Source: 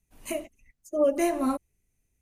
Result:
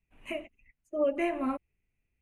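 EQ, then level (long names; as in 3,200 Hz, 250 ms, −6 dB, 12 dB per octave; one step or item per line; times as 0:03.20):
low-pass filter 10,000 Hz 12 dB per octave
high shelf with overshoot 3,600 Hz −11.5 dB, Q 3
−5.0 dB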